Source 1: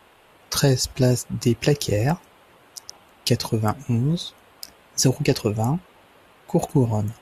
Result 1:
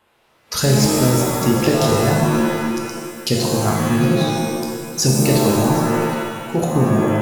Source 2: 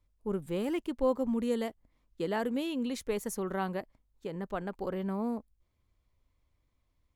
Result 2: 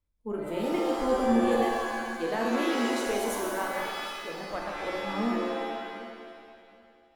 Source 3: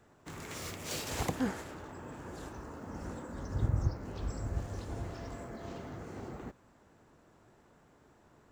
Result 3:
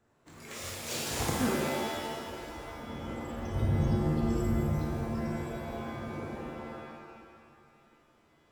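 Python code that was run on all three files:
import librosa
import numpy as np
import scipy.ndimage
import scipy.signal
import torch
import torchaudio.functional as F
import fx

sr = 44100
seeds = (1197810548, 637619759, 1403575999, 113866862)

p1 = fx.hum_notches(x, sr, base_hz=60, count=3)
p2 = fx.noise_reduce_blind(p1, sr, reduce_db=9)
p3 = p2 + fx.echo_feedback(p2, sr, ms=766, feedback_pct=17, wet_db=-19, dry=0)
y = fx.rev_shimmer(p3, sr, seeds[0], rt60_s=1.6, semitones=7, shimmer_db=-2, drr_db=-0.5)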